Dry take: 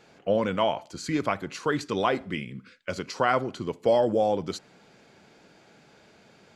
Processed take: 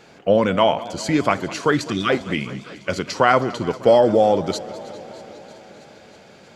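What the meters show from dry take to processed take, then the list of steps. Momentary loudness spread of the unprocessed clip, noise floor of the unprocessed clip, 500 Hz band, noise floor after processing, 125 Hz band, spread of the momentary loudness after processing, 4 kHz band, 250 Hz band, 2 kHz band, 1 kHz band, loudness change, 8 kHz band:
13 LU, −57 dBFS, +8.0 dB, −47 dBFS, +8.0 dB, 18 LU, +8.0 dB, +8.0 dB, +8.0 dB, +7.5 dB, +7.5 dB, +8.5 dB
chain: gain on a spectral selection 0:01.76–0:02.09, 380–1,100 Hz −26 dB
on a send: delay with a high-pass on its return 317 ms, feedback 77%, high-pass 3,700 Hz, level −19 dB
on the sum: feedback echo with a swinging delay time 201 ms, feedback 75%, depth 145 cents, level −18 dB
level +8 dB

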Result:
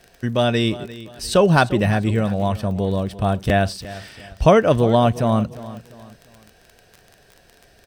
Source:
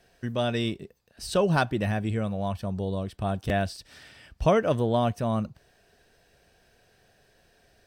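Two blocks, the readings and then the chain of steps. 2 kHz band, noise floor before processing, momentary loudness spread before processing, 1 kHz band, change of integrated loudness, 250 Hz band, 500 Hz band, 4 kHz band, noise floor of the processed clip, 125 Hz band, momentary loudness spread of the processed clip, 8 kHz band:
+8.5 dB, −64 dBFS, 10 LU, +8.5 dB, +8.5 dB, +8.5 dB, +8.5 dB, +8.5 dB, −54 dBFS, +8.5 dB, 18 LU, +8.5 dB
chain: surface crackle 27 per second −39 dBFS
on a send: repeating echo 349 ms, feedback 37%, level −16.5 dB
on the sum: level +8.5 dB

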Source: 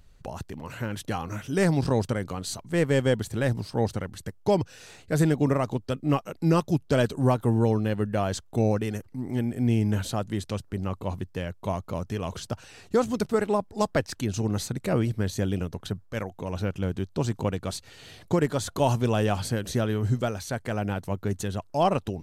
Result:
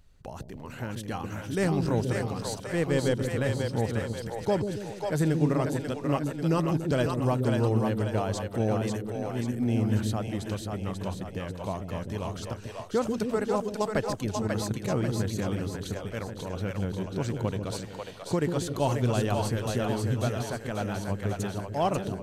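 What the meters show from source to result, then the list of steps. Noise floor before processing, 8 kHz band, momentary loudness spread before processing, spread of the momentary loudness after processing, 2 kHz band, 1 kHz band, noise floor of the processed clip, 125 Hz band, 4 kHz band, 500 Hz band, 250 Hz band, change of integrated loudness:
−54 dBFS, −2.0 dB, 10 LU, 9 LU, −2.0 dB, −2.0 dB, −42 dBFS, −2.0 dB, −2.0 dB, −2.0 dB, −2.0 dB, −2.0 dB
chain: echo with a time of its own for lows and highs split 460 Hz, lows 142 ms, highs 540 ms, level −3.5 dB
level −4 dB

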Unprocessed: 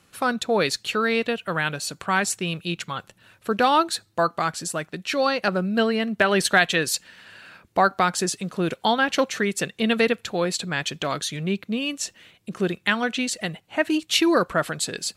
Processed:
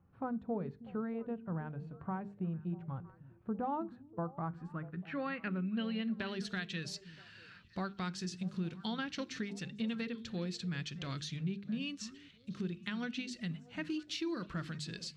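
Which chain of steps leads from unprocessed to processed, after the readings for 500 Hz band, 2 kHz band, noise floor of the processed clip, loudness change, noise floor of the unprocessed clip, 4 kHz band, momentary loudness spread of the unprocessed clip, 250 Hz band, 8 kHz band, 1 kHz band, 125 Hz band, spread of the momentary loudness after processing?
−20.0 dB, −21.0 dB, −60 dBFS, −16.5 dB, −62 dBFS, −18.0 dB, 10 LU, −11.5 dB, −23.0 dB, −20.5 dB, −7.5 dB, 7 LU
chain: guitar amp tone stack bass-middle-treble 6-0-2
harmonic and percussive parts rebalanced percussive −8 dB
downward compressor, threshold −48 dBFS, peak gain reduction 10.5 dB
parametric band 6,200 Hz −11 dB 2.6 octaves
low-pass filter sweep 800 Hz → 5,300 Hz, 0:04.34–0:06.42
mains-hum notches 50/100/150/200/250/300/350/400/450 Hz
echo through a band-pass that steps 321 ms, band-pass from 200 Hz, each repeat 1.4 octaves, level −12 dB
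level +14.5 dB

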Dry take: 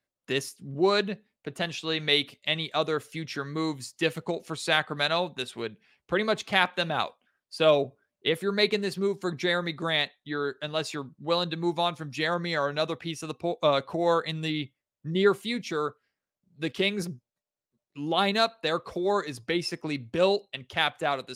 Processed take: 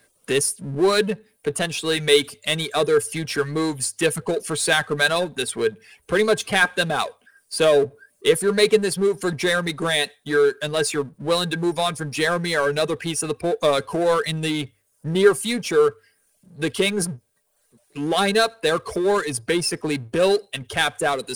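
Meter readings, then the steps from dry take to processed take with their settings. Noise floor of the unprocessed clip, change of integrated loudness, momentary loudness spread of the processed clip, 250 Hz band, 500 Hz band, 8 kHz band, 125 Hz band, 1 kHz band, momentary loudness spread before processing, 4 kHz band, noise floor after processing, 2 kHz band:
below −85 dBFS, +6.5 dB, 8 LU, +6.0 dB, +8.0 dB, +17.0 dB, +6.0 dB, +4.0 dB, 10 LU, +4.5 dB, −66 dBFS, +7.0 dB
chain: reverb reduction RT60 0.52 s
notch filter 880 Hz, Q 17
power curve on the samples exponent 0.7
parametric band 9,400 Hz +15 dB 0.35 octaves
mains-hum notches 50/100 Hz
hollow resonant body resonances 440/1,600 Hz, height 11 dB, ringing for 85 ms

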